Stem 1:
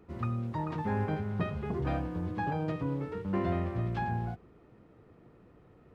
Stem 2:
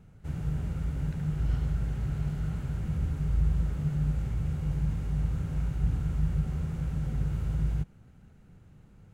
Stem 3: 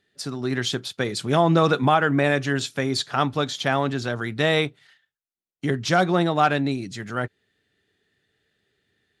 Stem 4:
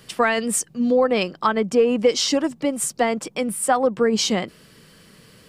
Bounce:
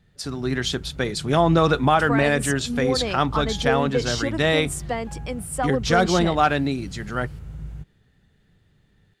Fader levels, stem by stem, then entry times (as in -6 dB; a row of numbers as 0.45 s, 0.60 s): -12.0 dB, -6.5 dB, +0.5 dB, -7.0 dB; 1.10 s, 0.00 s, 0.00 s, 1.90 s